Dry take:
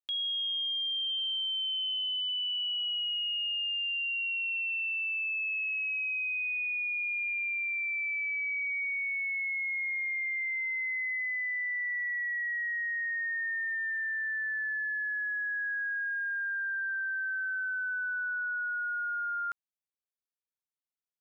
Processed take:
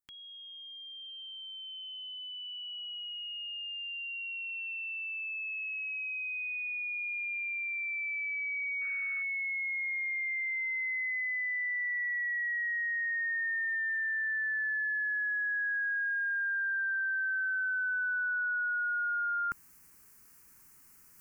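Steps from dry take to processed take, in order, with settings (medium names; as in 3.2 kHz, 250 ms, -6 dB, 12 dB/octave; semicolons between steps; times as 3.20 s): tilt shelf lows +6.5 dB, about 1.2 kHz; reverse; upward compressor, threshold -39 dBFS; reverse; painted sound noise, 8.81–9.23 s, 1.2–2.7 kHz -55 dBFS; treble shelf 2.7 kHz +11.5 dB; static phaser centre 1.5 kHz, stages 4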